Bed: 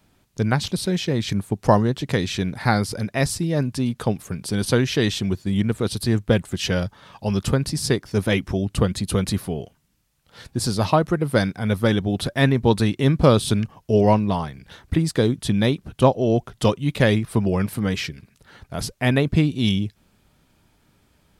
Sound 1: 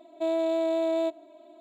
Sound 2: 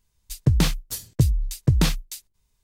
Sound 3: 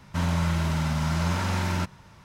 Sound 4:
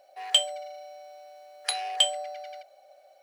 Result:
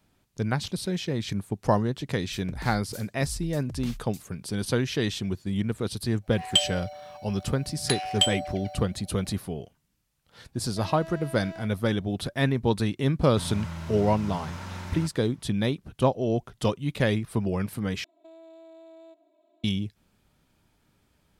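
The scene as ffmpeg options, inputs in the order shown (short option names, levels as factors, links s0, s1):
-filter_complex "[1:a]asplit=2[s0][s1];[0:a]volume=0.473[s2];[2:a]acompressor=threshold=0.0891:ratio=6:attack=3.2:release=140:knee=1:detection=peak[s3];[s0]asoftclip=type=hard:threshold=0.0282[s4];[s1]acompressor=threshold=0.0251:ratio=6:attack=3.2:release=140:knee=1:detection=peak[s5];[s2]asplit=2[s6][s7];[s6]atrim=end=18.044[s8];[s5]atrim=end=1.6,asetpts=PTS-STARTPTS,volume=0.2[s9];[s7]atrim=start=19.636[s10];[s3]atrim=end=2.63,asetpts=PTS-STARTPTS,volume=0.224,afade=t=in:d=0.004:c=hsin,afade=t=out:st=2.626:d=0.004:c=hsin,adelay=2020[s11];[4:a]atrim=end=3.22,asetpts=PTS-STARTPTS,afade=t=in:d=0.1,afade=t=out:st=3.12:d=0.1,adelay=6210[s12];[s4]atrim=end=1.6,asetpts=PTS-STARTPTS,volume=0.335,afade=t=in:d=0.004:c=hsin,afade=t=out:st=1.596:d=0.004:c=hsin,adelay=10560[s13];[3:a]atrim=end=2.24,asetpts=PTS-STARTPTS,volume=0.282,afade=t=in:d=0.004:c=hsin,afade=t=out:st=2.236:d=0.004:c=hsin,adelay=13220[s14];[s8][s9]acrossfade=d=0.004:c1=hsin:c2=hsin[s15];[s15][s10]acrossfade=d=0.004:c1=hsin:c2=hsin[s16];[s16][s11][s12][s13][s14]amix=inputs=5:normalize=0"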